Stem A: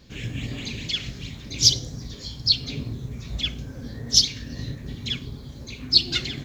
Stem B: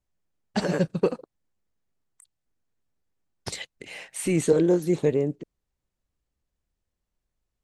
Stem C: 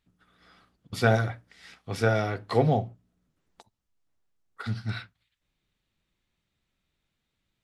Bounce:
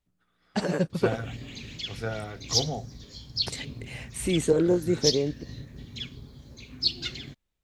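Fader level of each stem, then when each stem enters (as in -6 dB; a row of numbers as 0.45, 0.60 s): -8.5, -2.0, -9.0 dB; 0.90, 0.00, 0.00 s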